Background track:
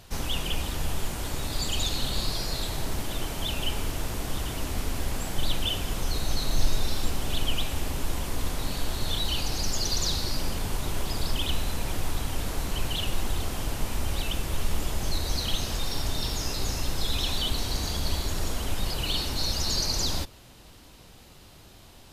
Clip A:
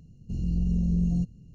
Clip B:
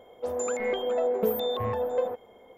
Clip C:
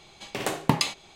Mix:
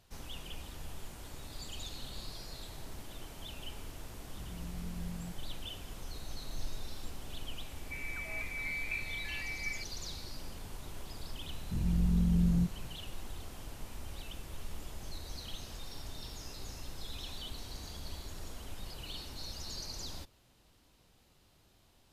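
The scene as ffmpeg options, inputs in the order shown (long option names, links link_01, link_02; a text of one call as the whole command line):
ffmpeg -i bed.wav -i cue0.wav -i cue1.wav -filter_complex "[1:a]asplit=2[link_01][link_02];[0:a]volume=-15.5dB[link_03];[2:a]lowpass=frequency=2400:width_type=q:width=0.5098,lowpass=frequency=2400:width_type=q:width=0.6013,lowpass=frequency=2400:width_type=q:width=0.9,lowpass=frequency=2400:width_type=q:width=2.563,afreqshift=-2800[link_04];[link_01]atrim=end=1.54,asetpts=PTS-STARTPTS,volume=-17.5dB,afade=type=in:duration=0.004:curve=hsin,afade=type=out:start_time=1.536:duration=0.004:curve=hsin,adelay=4080[link_05];[link_04]atrim=end=2.57,asetpts=PTS-STARTPTS,volume=-13dB,afade=type=in:duration=0.004:curve=hsin,afade=type=out:start_time=2.566:duration=0.004:curve=hsin,adelay=7680[link_06];[link_02]atrim=end=1.54,asetpts=PTS-STARTPTS,volume=-3dB,afade=type=in:duration=0.004:curve=hsin,afade=type=out:start_time=1.536:duration=0.004:curve=hsin,adelay=11420[link_07];[link_03][link_05][link_06][link_07]amix=inputs=4:normalize=0" out.wav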